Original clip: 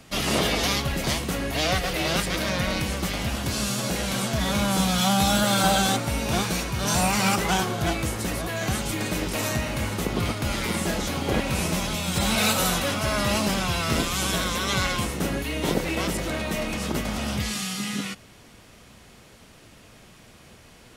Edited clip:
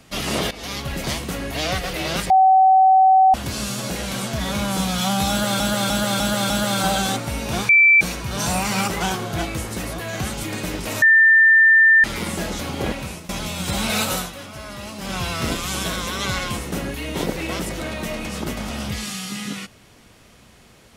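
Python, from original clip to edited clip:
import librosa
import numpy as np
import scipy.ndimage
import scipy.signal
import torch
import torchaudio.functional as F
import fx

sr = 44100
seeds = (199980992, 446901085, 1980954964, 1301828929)

y = fx.edit(x, sr, fx.fade_in_from(start_s=0.51, length_s=0.44, floor_db=-17.5),
    fx.bleep(start_s=2.3, length_s=1.04, hz=760.0, db=-9.5),
    fx.repeat(start_s=5.3, length_s=0.3, count=5),
    fx.insert_tone(at_s=6.49, length_s=0.32, hz=2330.0, db=-9.0),
    fx.bleep(start_s=9.5, length_s=1.02, hz=1790.0, db=-9.0),
    fx.fade_out_to(start_s=11.33, length_s=0.44, floor_db=-20.0),
    fx.fade_down_up(start_s=12.61, length_s=1.03, db=-10.5, fade_s=0.17), tone=tone)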